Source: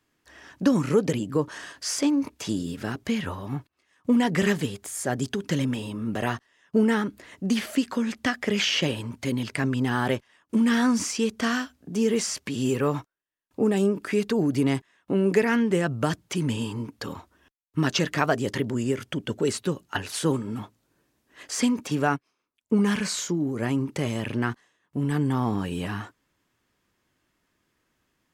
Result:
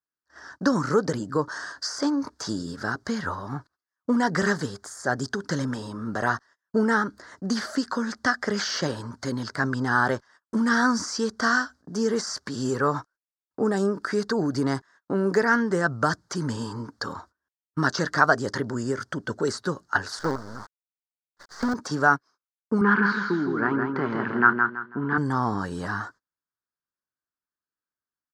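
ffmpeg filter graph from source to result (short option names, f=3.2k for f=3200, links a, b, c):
-filter_complex "[0:a]asettb=1/sr,asplit=3[a][b][c];[a]atrim=end=20.194[d];[b]atrim=start=20.19:end=21.74,asetpts=PTS-STARTPTS,afade=t=in:d=0.004:c=qsin,afade=t=out:st=1.546:d=0.004:c=qsin,lowpass=2.4k,lowshelf=f=290:g=-3.5,acrusher=bits=5:dc=4:mix=0:aa=0.000001[e];[c]atrim=start=21.736[f];[d][e]acrossfade=d=0.004:c1=hsin:c2=qsin[g];[g][f]acrossfade=d=0.004:c1=qsin:c2=hsin,asettb=1/sr,asplit=3[h][i][j];[h]atrim=end=22.814[k];[i]atrim=start=22.81:end=25.18,asetpts=PTS-STARTPTS,afade=t=in:d=0.004:c=qsin,afade=t=out:st=2.366:d=0.004:c=qsin,highpass=160,equalizer=f=210:t=q:w=4:g=5,equalizer=f=380:t=q:w=4:g=7,equalizer=f=580:t=q:w=4:g=-8,equalizer=f=1k:t=q:w=4:g=4,equalizer=f=1.4k:t=q:w=4:g=8,equalizer=f=2.5k:t=q:w=4:g=5,lowpass=f=3k:w=0.5412,lowpass=f=3k:w=1.3066,aecho=1:1:164|328|492|656:0.562|0.163|0.0473|0.0137,atrim=end_sample=104517[l];[j]atrim=start=25.176[m];[k][l]acrossfade=d=0.004:c1=hsin:c2=qsin[n];[n][m]acrossfade=d=0.004:c1=qsin:c2=hsin,agate=range=-28dB:threshold=-50dB:ratio=16:detection=peak,deesser=0.65,firequalizer=gain_entry='entry(260,0);entry(1500,13);entry(2500,-15);entry(4600,10);entry(12000,-11)':delay=0.05:min_phase=1,volume=-2.5dB"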